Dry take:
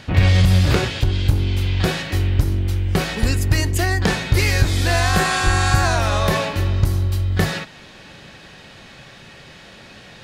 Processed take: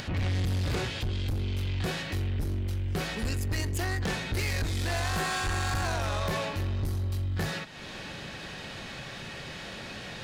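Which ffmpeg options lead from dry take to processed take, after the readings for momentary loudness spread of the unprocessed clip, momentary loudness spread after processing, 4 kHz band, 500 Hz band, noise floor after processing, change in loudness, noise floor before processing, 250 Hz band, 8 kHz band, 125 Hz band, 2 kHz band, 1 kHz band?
5 LU, 10 LU, −10.5 dB, −11.0 dB, −41 dBFS, −13.0 dB, −43 dBFS, −11.5 dB, −11.0 dB, −12.5 dB, −11.0 dB, −11.5 dB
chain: -af "acompressor=mode=upward:threshold=-22dB:ratio=2.5,asoftclip=type=tanh:threshold=-18dB,volume=-7.5dB"

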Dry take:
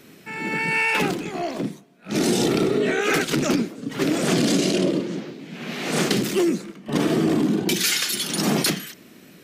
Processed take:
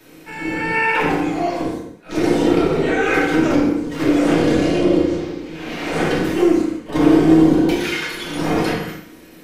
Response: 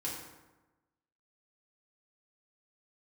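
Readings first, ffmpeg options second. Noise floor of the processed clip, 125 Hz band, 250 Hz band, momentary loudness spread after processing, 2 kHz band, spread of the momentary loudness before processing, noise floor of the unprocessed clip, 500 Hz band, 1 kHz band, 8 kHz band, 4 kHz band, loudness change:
−42 dBFS, +3.0 dB, +6.5 dB, 13 LU, +3.5 dB, 11 LU, −48 dBFS, +5.5 dB, +6.5 dB, −9.0 dB, −4.0 dB, +4.5 dB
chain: -filter_complex "[0:a]equalizer=frequency=560:width=0.56:gain=2.5,acrossover=split=360|720|2900[link_01][link_02][link_03][link_04];[link_01]aeval=exprs='max(val(0),0)':channel_layout=same[link_05];[link_04]acompressor=threshold=-41dB:ratio=6[link_06];[link_05][link_02][link_03][link_06]amix=inputs=4:normalize=0[link_07];[1:a]atrim=start_sample=2205,afade=type=out:start_time=0.34:duration=0.01,atrim=end_sample=15435[link_08];[link_07][link_08]afir=irnorm=-1:irlink=0,volume=2dB"

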